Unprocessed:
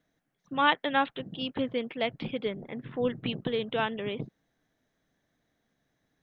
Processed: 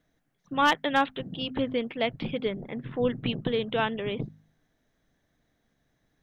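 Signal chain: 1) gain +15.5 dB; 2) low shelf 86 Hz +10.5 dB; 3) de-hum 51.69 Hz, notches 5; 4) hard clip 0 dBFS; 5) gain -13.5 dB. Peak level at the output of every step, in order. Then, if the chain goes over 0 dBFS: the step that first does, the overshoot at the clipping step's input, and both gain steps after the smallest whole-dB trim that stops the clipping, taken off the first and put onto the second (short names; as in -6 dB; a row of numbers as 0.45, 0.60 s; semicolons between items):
+7.0, +7.0, +7.0, 0.0, -13.5 dBFS; step 1, 7.0 dB; step 1 +8.5 dB, step 5 -6.5 dB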